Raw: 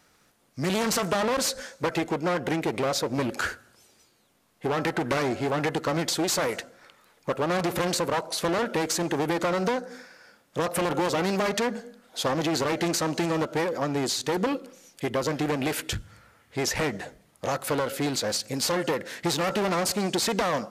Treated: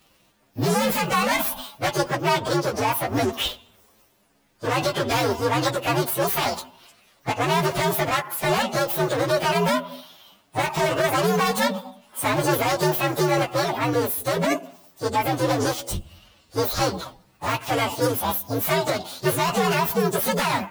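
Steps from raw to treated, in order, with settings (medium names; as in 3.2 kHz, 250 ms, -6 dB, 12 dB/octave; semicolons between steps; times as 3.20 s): frequency axis rescaled in octaves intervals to 126%; formant shift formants +5 st; trim +7.5 dB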